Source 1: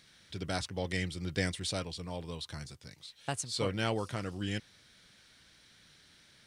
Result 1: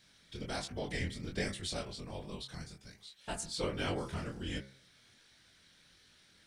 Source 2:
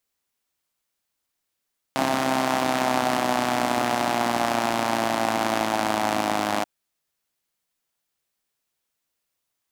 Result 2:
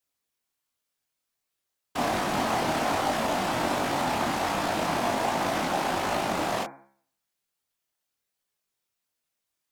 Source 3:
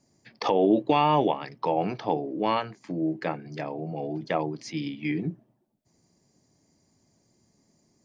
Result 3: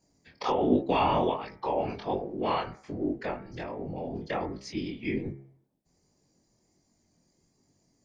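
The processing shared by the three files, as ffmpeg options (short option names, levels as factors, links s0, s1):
-af "afftfilt=real='hypot(re,im)*cos(2*PI*random(0))':imag='hypot(re,im)*sin(2*PI*random(1))':win_size=512:overlap=0.75,bandreject=f=67.71:t=h:w=4,bandreject=f=135.42:t=h:w=4,bandreject=f=203.13:t=h:w=4,bandreject=f=270.84:t=h:w=4,bandreject=f=338.55:t=h:w=4,bandreject=f=406.26:t=h:w=4,bandreject=f=473.97:t=h:w=4,bandreject=f=541.68:t=h:w=4,bandreject=f=609.39:t=h:w=4,bandreject=f=677.1:t=h:w=4,bandreject=f=744.81:t=h:w=4,bandreject=f=812.52:t=h:w=4,bandreject=f=880.23:t=h:w=4,bandreject=f=947.94:t=h:w=4,bandreject=f=1015.65:t=h:w=4,bandreject=f=1083.36:t=h:w=4,bandreject=f=1151.07:t=h:w=4,bandreject=f=1218.78:t=h:w=4,bandreject=f=1286.49:t=h:w=4,bandreject=f=1354.2:t=h:w=4,bandreject=f=1421.91:t=h:w=4,bandreject=f=1489.62:t=h:w=4,bandreject=f=1557.33:t=h:w=4,bandreject=f=1625.04:t=h:w=4,bandreject=f=1692.75:t=h:w=4,bandreject=f=1760.46:t=h:w=4,bandreject=f=1828.17:t=h:w=4,bandreject=f=1895.88:t=h:w=4,bandreject=f=1963.59:t=h:w=4,bandreject=f=2031.3:t=h:w=4,bandreject=f=2099.01:t=h:w=4,bandreject=f=2166.72:t=h:w=4,bandreject=f=2234.43:t=h:w=4,bandreject=f=2302.14:t=h:w=4,bandreject=f=2369.85:t=h:w=4,flanger=delay=20:depth=5.3:speed=1.3,volume=2"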